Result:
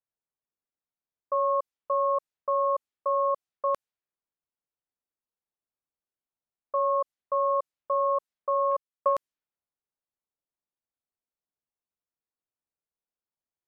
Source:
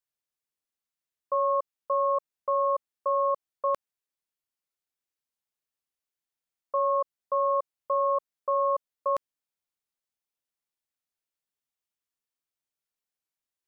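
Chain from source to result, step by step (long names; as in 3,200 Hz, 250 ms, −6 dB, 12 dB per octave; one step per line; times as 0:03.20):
0:08.71–0:09.14: transient designer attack +5 dB, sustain −10 dB
low-pass that shuts in the quiet parts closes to 1,100 Hz, open at −25.5 dBFS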